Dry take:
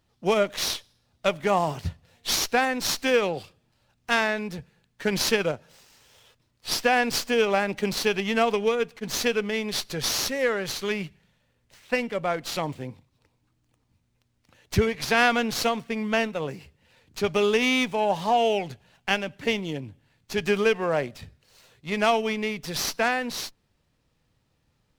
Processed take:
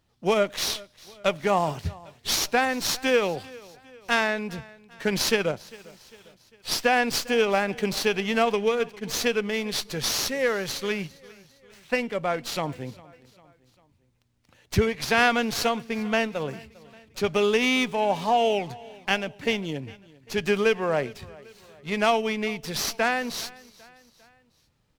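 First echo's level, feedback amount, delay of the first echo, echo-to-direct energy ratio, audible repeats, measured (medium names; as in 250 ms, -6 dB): -22.0 dB, 50%, 400 ms, -21.0 dB, 3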